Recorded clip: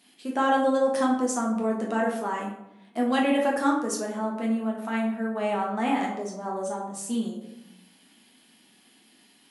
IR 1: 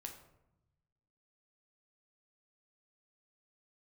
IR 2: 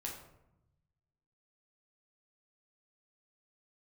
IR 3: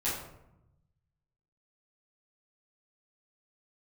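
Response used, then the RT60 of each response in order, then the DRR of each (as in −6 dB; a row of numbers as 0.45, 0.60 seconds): 2; 0.90, 0.85, 0.85 seconds; 2.5, −2.0, −11.5 decibels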